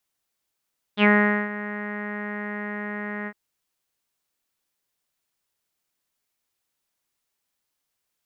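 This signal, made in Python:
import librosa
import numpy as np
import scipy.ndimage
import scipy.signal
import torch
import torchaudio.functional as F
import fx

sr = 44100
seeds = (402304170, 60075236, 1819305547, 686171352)

y = fx.sub_voice(sr, note=56, wave='saw', cutoff_hz=1900.0, q=6.6, env_oct=1.0, env_s=0.1, attack_ms=64.0, decay_s=0.45, sustain_db=-16, release_s=0.06, note_s=2.3, slope=24)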